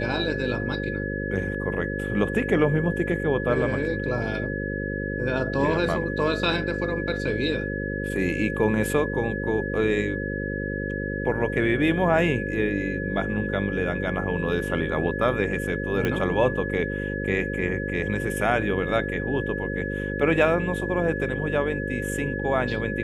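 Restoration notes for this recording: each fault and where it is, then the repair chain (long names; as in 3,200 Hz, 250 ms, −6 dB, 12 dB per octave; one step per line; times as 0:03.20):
mains buzz 50 Hz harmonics 11 −30 dBFS
whistle 1,700 Hz −32 dBFS
0:16.05: click −13 dBFS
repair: click removal
notch filter 1,700 Hz, Q 30
hum removal 50 Hz, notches 11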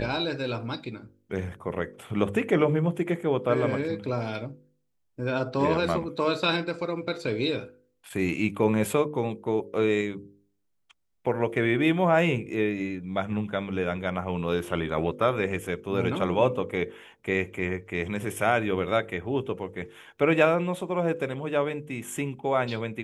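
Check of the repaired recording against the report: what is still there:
none of them is left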